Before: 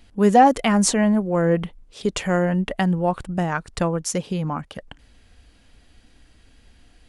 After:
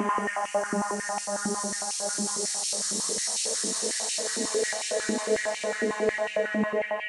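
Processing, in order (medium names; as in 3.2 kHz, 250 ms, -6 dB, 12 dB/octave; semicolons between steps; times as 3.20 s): Paulstretch 26×, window 0.25 s, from 0.75 s; step-sequenced high-pass 11 Hz 300–2600 Hz; trim -8.5 dB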